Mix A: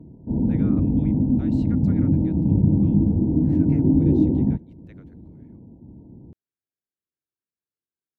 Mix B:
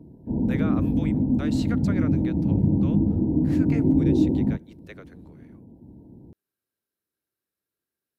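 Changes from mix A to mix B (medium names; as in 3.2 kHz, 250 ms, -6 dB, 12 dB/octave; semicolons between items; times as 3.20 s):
speech +11.5 dB; master: add tone controls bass -4 dB, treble +6 dB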